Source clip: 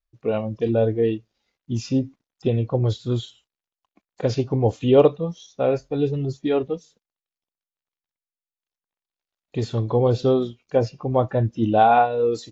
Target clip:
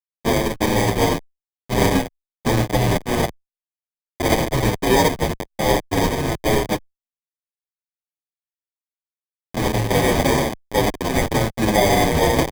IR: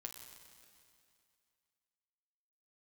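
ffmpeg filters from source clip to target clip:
-filter_complex "[0:a]asettb=1/sr,asplit=3[s0][s1][s2];[s0]atrim=end=0.764[s3];[s1]atrim=start=0.76:end=1.16,asetpts=PTS-STARTPTS,afade=t=in:d=0.004:c=qsin,afade=t=out:st=0.396:d=0.004:c=qsin,acrossover=split=3800[s4][s5];[s5]acompressor=threshold=0.001:ratio=4:attack=1:release=60[s6];[s4][s6]amix=inputs=2:normalize=0[s7];[s2]atrim=start=1.156[s8];[s3][s7]acrossfade=d=0.004:c1=hsin:c2=qsin[s9];[s9][s8]acrossfade=d=0.004:c1=qsin:c2=hsin,asettb=1/sr,asplit=3[s10][s11][s12];[s10]atrim=end=4.544[s13];[s11]atrim=start=4.54:end=5.27,asetpts=PTS-STARTPTS,afade=t=in:d=0.004:c=qsin,afade=t=out:st=0.726:d=0.004:c=qsin,highpass=56[s14];[s12]atrim=start=5.266[s15];[s13][s14]acrossfade=d=0.004:c1=hsin:c2=qsin[s16];[s16][s15]acrossfade=d=0.004:c1=qsin:c2=hsin,asettb=1/sr,asplit=3[s17][s18][s19];[s17]atrim=end=10.104[s20];[s18]atrim=start=10.1:end=10.6,asetpts=PTS-STARTPTS,afade=t=in:d=0.004:c=qsin,afade=t=out:st=0.496:d=0.004:c=qsin,bandreject=f=204.8:t=h:w=4,bandreject=f=409.6:t=h:w=4,bandreject=f=614.4:t=h:w=4,bandreject=f=819.2:t=h:w=4[s21];[s19]atrim=start=10.596[s22];[s20][s21]acrossfade=d=0.004:c1=hsin:c2=qsin[s23];[s23][s22]acrossfade=d=0.004:c1=qsin:c2=hsin,acrusher=bits=5:mix=0:aa=0.000001,asoftclip=type=tanh:threshold=0.631,aexciter=amount=14.2:drive=6.4:freq=4100,acrusher=samples=32:mix=1:aa=0.000001,asplit=2[s24][s25];[s25]adelay=8,afreqshift=-1[s26];[s24][s26]amix=inputs=2:normalize=1"

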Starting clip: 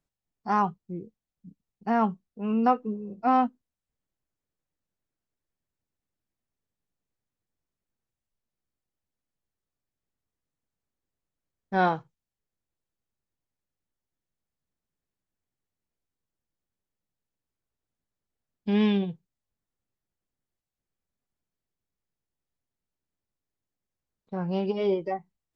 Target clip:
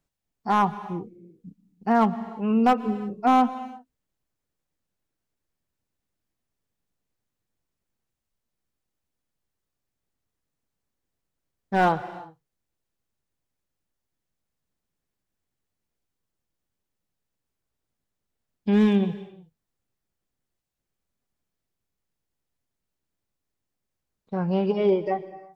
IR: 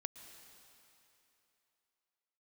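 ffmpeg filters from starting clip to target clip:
-filter_complex "[0:a]acrossover=split=3000[s0][s1];[s1]acompressor=threshold=0.00141:ratio=4:attack=1:release=60[s2];[s0][s2]amix=inputs=2:normalize=0,volume=7.08,asoftclip=hard,volume=0.141,asplit=2[s3][s4];[1:a]atrim=start_sample=2205,afade=t=out:st=0.42:d=0.01,atrim=end_sample=18963[s5];[s4][s5]afir=irnorm=-1:irlink=0,volume=1.78[s6];[s3][s6]amix=inputs=2:normalize=0,volume=0.75"

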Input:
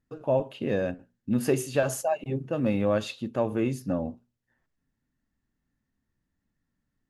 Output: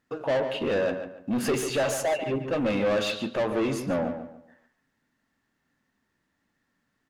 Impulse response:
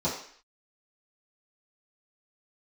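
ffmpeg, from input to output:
-filter_complex "[0:a]asplit=2[s0][s1];[s1]highpass=f=720:p=1,volume=20,asoftclip=type=tanh:threshold=0.282[s2];[s0][s2]amix=inputs=2:normalize=0,lowpass=f=3400:p=1,volume=0.501,asplit=2[s3][s4];[s4]adelay=143,lowpass=f=3100:p=1,volume=0.376,asplit=2[s5][s6];[s6]adelay=143,lowpass=f=3100:p=1,volume=0.31,asplit=2[s7][s8];[s8]adelay=143,lowpass=f=3100:p=1,volume=0.31,asplit=2[s9][s10];[s10]adelay=143,lowpass=f=3100:p=1,volume=0.31[s11];[s3][s5][s7][s9][s11]amix=inputs=5:normalize=0,volume=0.473"

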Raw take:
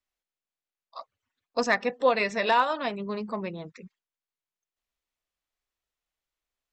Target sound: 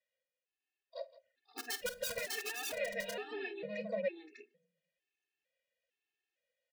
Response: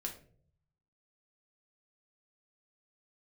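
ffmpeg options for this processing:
-filter_complex "[0:a]asplit=3[s0][s1][s2];[s0]bandpass=f=530:t=q:w=8,volume=1[s3];[s1]bandpass=f=1840:t=q:w=8,volume=0.501[s4];[s2]bandpass=f=2480:t=q:w=8,volume=0.355[s5];[s3][s4][s5]amix=inputs=3:normalize=0,aeval=exprs='(mod(21.1*val(0)+1,2)-1)/21.1':c=same,asplit=2[s6][s7];[1:a]atrim=start_sample=2205,lowshelf=f=360:g=8.5[s8];[s7][s8]afir=irnorm=-1:irlink=0,volume=0.15[s9];[s6][s9]amix=inputs=2:normalize=0,acompressor=threshold=0.02:ratio=6,highshelf=f=3000:g=9,aecho=1:1:49|166|522|600|629:0.133|0.126|0.211|0.596|0.188,alimiter=level_in=4.22:limit=0.0631:level=0:latency=1:release=437,volume=0.237,afftfilt=real='re*gt(sin(2*PI*1.1*pts/sr)*(1-2*mod(floor(b*sr/1024/230),2)),0)':imag='im*gt(sin(2*PI*1.1*pts/sr)*(1-2*mod(floor(b*sr/1024/230),2)),0)':win_size=1024:overlap=0.75,volume=4.22"

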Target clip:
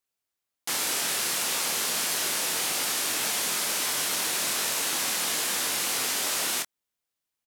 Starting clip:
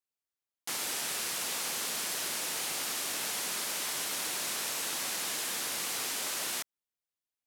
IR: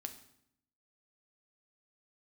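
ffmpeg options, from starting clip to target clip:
-filter_complex "[0:a]asplit=2[s0][s1];[s1]adelay=24,volume=0.447[s2];[s0][s2]amix=inputs=2:normalize=0,volume=2"

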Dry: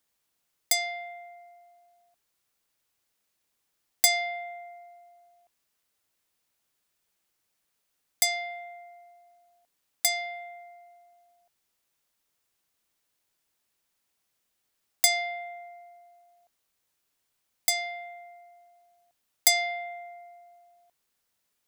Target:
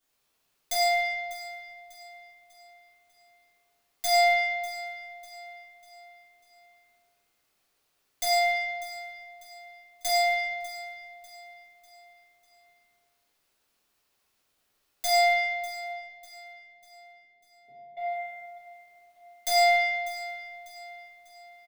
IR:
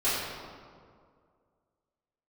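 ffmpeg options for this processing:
-filter_complex "[0:a]alimiter=limit=0.188:level=0:latency=1:release=134,aeval=exprs='0.188*(cos(1*acos(clip(val(0)/0.188,-1,1)))-cos(1*PI/2))+0.00596*(cos(4*acos(clip(val(0)/0.188,-1,1)))-cos(4*PI/2))':c=same,asettb=1/sr,asplit=3[s0][s1][s2];[s0]atrim=end=15.834[s3];[s1]atrim=start=15.83:end=17.97,asetpts=PTS-STARTPTS,afade=t=in:d=0.004:c=qsin,afade=t=out:st=2.136:d=0.004:c=qsin,asuperpass=centerf=240:order=8:qfactor=0.76[s4];[s2]atrim=start=17.966[s5];[s3][s4]acrossfade=d=0.004:c1=hsin:c2=qsin[s6];[s6][s5]acrossfade=d=0.004:c1=qsin:c2=hsin,aecho=1:1:596|1192|1788|2384:0.158|0.0697|0.0307|0.0135[s7];[1:a]atrim=start_sample=2205[s8];[s7][s8]afir=irnorm=-1:irlink=0,volume=0.531"

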